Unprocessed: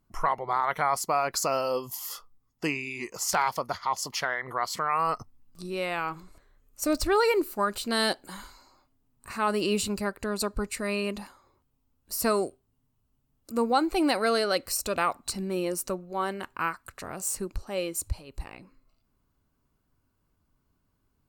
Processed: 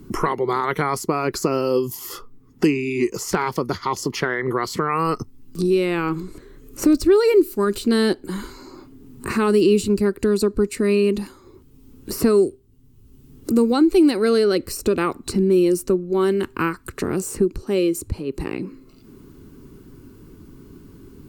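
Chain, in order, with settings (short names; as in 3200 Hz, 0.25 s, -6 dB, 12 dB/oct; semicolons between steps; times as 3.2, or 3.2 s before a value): resonant low shelf 500 Hz +8.5 dB, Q 3; three-band squash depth 70%; gain +2 dB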